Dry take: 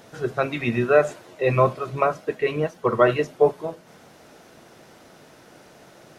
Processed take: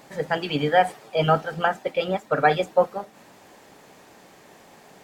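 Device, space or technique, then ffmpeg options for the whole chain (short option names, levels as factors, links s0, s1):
nightcore: -af "asetrate=54243,aresample=44100,volume=0.891"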